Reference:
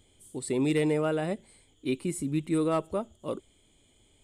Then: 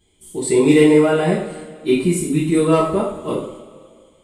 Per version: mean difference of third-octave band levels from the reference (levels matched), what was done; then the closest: 5.5 dB: gate -58 dBFS, range -10 dB; two-slope reverb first 0.5 s, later 2.2 s, from -17 dB, DRR -7 dB; trim +5 dB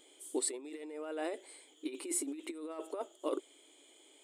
11.5 dB: compressor with a negative ratio -33 dBFS, ratio -0.5; brick-wall FIR high-pass 270 Hz; trim -2 dB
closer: first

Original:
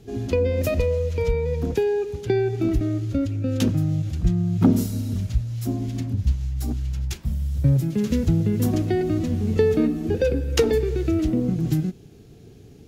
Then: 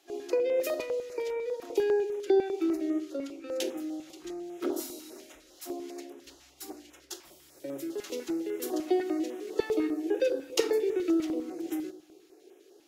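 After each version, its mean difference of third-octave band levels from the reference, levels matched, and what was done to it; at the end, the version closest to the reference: 9.5 dB: elliptic high-pass 320 Hz, stop band 40 dB; simulated room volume 850 m³, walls furnished, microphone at 1 m; step-sequenced notch 10 Hz 430–4500 Hz; trim -3 dB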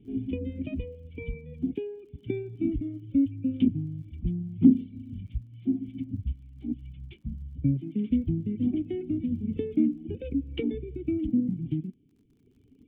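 12.0 dB: reverb removal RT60 2 s; cascade formant filter i; crackle 45 per s -62 dBFS; trim +3 dB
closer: first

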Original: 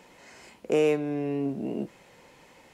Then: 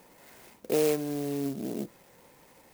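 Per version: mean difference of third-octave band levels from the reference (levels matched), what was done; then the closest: 4.5 dB: sampling jitter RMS 0.077 ms; trim -2.5 dB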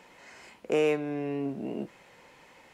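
1.5 dB: peaking EQ 1.6 kHz +5.5 dB 2.6 oct; trim -4 dB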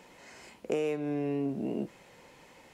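3.0 dB: compression 6:1, threshold -26 dBFS, peak gain reduction 7.5 dB; trim -1 dB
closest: second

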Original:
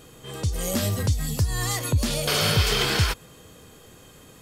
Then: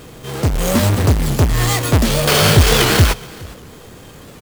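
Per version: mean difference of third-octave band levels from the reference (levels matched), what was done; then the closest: 3.5 dB: square wave that keeps the level; delay 416 ms -22.5 dB; warped record 78 rpm, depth 160 cents; trim +5.5 dB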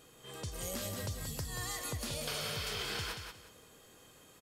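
5.0 dB: bass shelf 270 Hz -8 dB; compression, threshold -27 dBFS, peak gain reduction 7.5 dB; feedback delay 181 ms, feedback 24%, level -6 dB; trim -9 dB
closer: first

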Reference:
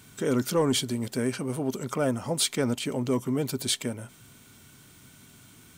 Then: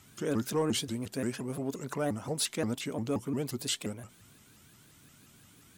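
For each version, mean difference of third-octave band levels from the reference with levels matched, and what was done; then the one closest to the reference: 2.5 dB: vibrato with a chosen wave saw up 5.7 Hz, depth 250 cents; trim -5.5 dB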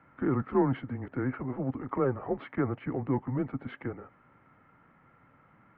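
11.0 dB: mistuned SSB -130 Hz 290–2000 Hz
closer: first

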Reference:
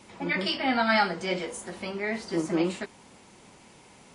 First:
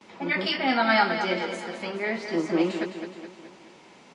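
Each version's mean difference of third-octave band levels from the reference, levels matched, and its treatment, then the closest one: 4.0 dB: gate with hold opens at -47 dBFS; three-band isolator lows -16 dB, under 160 Hz, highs -24 dB, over 6.4 kHz; on a send: feedback delay 211 ms, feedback 53%, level -9 dB; on the sum: trim +2 dB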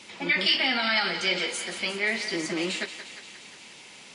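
5.5 dB: peak limiter -21 dBFS, peak gain reduction 9.5 dB; frequency weighting D; thinning echo 177 ms, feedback 68%, high-pass 620 Hz, level -10 dB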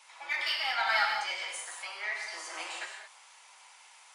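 12.0 dB: high-pass 880 Hz 24 dB/octave; in parallel at -6 dB: saturation -31.5 dBFS, distortion -6 dB; on the sum: gated-style reverb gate 240 ms flat, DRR 0 dB; trim -5.5 dB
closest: first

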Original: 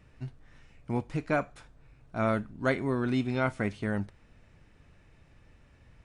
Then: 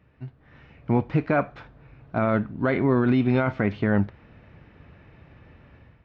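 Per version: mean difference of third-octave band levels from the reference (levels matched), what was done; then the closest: 3.5 dB: high-pass 67 Hz; peak limiter -23 dBFS, peak gain reduction 9 dB; level rider gain up to 11 dB; Gaussian low-pass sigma 2.5 samples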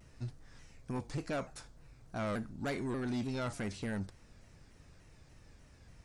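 6.5 dB: resonant high shelf 3.9 kHz +7.5 dB, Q 1.5; in parallel at +2 dB: peak limiter -26.5 dBFS, peak gain reduction 11.5 dB; on the sum: saturation -23.5 dBFS, distortion -10 dB; vibrato with a chosen wave saw down 3.4 Hz, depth 160 cents; trim -7.5 dB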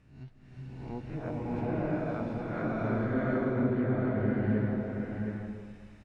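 11.0 dB: reverse spectral sustain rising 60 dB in 0.59 s; low-pass that closes with the level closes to 350 Hz, closed at -22.5 dBFS; delay 718 ms -5.5 dB; swelling reverb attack 760 ms, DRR -9 dB; trim -8.5 dB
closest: first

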